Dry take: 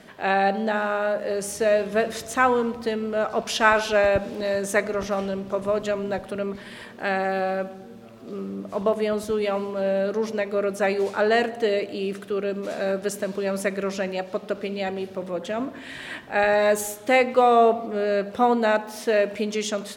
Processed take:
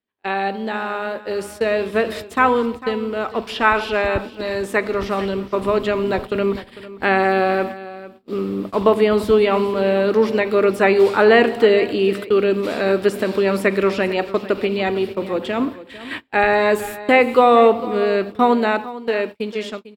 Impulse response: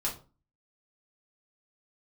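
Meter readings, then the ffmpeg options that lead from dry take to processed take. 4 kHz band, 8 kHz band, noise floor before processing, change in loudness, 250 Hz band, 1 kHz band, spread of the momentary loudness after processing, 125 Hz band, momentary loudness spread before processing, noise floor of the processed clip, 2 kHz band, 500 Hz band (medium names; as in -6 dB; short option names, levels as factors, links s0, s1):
+4.5 dB, no reading, -42 dBFS, +5.5 dB, +7.0 dB, +4.5 dB, 11 LU, +6.0 dB, 11 LU, -42 dBFS, +5.0 dB, +5.5 dB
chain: -filter_complex "[0:a]dynaudnorm=f=220:g=13:m=6.31,equalizer=f=160:t=o:w=0.67:g=-11,equalizer=f=630:t=o:w=0.67:g=-10,equalizer=f=1600:t=o:w=0.67:g=-5,equalizer=f=10000:t=o:w=0.67:g=-7,agate=range=0.01:threshold=0.0282:ratio=16:detection=peak,acrossover=split=2600[s0][s1];[s1]acompressor=threshold=0.0158:ratio=4:attack=1:release=60[s2];[s0][s2]amix=inputs=2:normalize=0,equalizer=f=6300:w=3.7:g=-12.5,aecho=1:1:449:0.158,volume=1.68"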